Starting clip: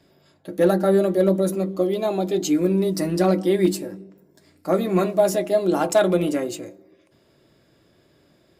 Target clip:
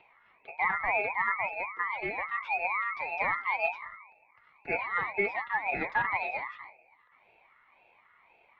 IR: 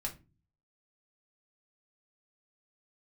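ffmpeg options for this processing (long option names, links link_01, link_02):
-filter_complex "[0:a]afftfilt=real='real(if(between(b,1,1012),(2*floor((b-1)/92)+1)*92-b,b),0)':imag='imag(if(between(b,1,1012),(2*floor((b-1)/92)+1)*92-b,b),0)*if(between(b,1,1012),-1,1)':win_size=2048:overlap=0.75,acrossover=split=340|1000|2400[link_01][link_02][link_03][link_04];[link_01]asoftclip=type=tanh:threshold=-35.5dB[link_05];[link_03]acompressor=mode=upward:threshold=-42dB:ratio=2.5[link_06];[link_05][link_02][link_06][link_04]amix=inputs=4:normalize=0,highpass=frequency=260:width_type=q:width=0.5412,highpass=frequency=260:width_type=q:width=1.307,lowpass=frequency=3300:width_type=q:width=0.5176,lowpass=frequency=3300:width_type=q:width=0.7071,lowpass=frequency=3300:width_type=q:width=1.932,afreqshift=-54,aeval=exprs='val(0)*sin(2*PI*630*n/s+630*0.45/1.9*sin(2*PI*1.9*n/s))':channel_layout=same,volume=-8.5dB"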